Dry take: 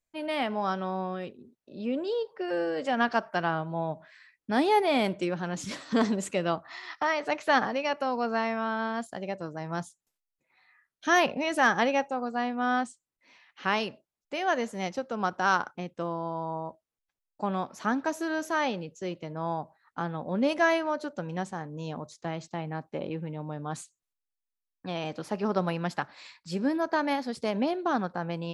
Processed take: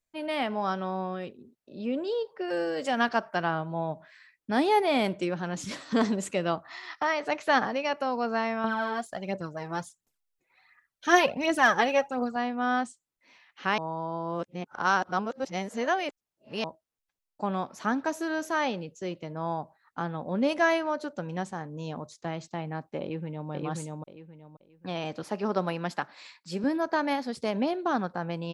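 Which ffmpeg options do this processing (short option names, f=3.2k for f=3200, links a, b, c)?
-filter_complex "[0:a]asettb=1/sr,asplit=3[a][b][c];[a]atrim=end=2.504[d];[b]atrim=start=2.5:end=3.09,asetpts=PTS-STARTPTS,afade=t=in:d=0.004:c=qsin,afade=t=out:st=0.586:d=0.004:c=qsin,aemphasis=mode=production:type=50fm[e];[c]atrim=start=3.086[f];[d][e]acrossfade=d=0.004:c1=hsin:c2=qsin[g];[g][f]acrossfade=d=0.004:c1=qsin:c2=hsin,asettb=1/sr,asplit=3[h][i][j];[h]atrim=end=8.644[k];[i]atrim=start=8.64:end=12.36,asetpts=PTS-STARTPTS,afade=t=in:d=0.004:c=qsin,afade=t=out:st=3.716:d=0.004:c=qsin,aphaser=in_gain=1:out_gain=1:delay=2.8:decay=0.56:speed=1.4:type=triangular[l];[j]atrim=start=12.356[m];[k][l]acrossfade=d=0.004:c1=hsin:c2=qsin[n];[n][m]acrossfade=d=0.004:c1=qsin:c2=hsin,asplit=2[o][p];[p]afade=t=in:st=23.01:d=0.01,afade=t=out:st=23.5:d=0.01,aecho=0:1:530|1060|1590|2120:0.841395|0.210349|0.0525872|0.0131468[q];[o][q]amix=inputs=2:normalize=0,asettb=1/sr,asplit=3[r][s][t];[r]atrim=end=25.234[u];[s]atrim=start=25.23:end=26.64,asetpts=PTS-STARTPTS,afade=t=in:d=0.004:c=qsin,afade=t=out:st=1.406:d=0.004:c=qsin,highpass=170[v];[t]atrim=start=26.636[w];[u][v]acrossfade=d=0.004:c1=hsin:c2=qsin[x];[x][w]acrossfade=d=0.004:c1=qsin:c2=hsin,asplit=3[y][z][aa];[y]atrim=end=13.782[ab];[z]atrim=start=13.778:end=16.642,asetpts=PTS-STARTPTS,areverse[ac];[aa]atrim=start=16.638[ad];[ab][ac]acrossfade=d=0.004:c1=hsin:c2=hsin[ae];[ae][ad]acrossfade=d=0.004:c1=hsin:c2=hsin"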